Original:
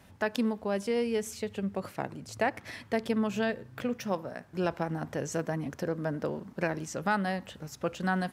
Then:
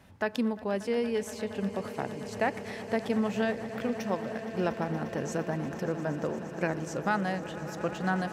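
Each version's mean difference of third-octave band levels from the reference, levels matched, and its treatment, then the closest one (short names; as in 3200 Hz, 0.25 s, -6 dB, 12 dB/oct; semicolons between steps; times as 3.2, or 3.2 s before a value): 4.5 dB: high shelf 5200 Hz -5 dB; swelling echo 0.117 s, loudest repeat 8, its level -18 dB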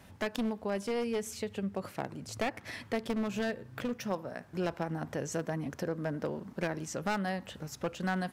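2.5 dB: one-sided fold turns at -26.5 dBFS; in parallel at +1 dB: compressor, threshold -39 dBFS, peak gain reduction 14.5 dB; on the sum: gain -5 dB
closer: second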